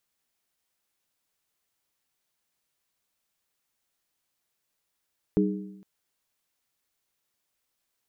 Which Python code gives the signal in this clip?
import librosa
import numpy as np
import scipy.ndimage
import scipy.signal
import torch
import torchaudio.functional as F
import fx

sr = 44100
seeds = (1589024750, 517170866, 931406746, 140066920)

y = fx.strike_skin(sr, length_s=0.46, level_db=-20, hz=194.0, decay_s=0.93, tilt_db=1.5, modes=3)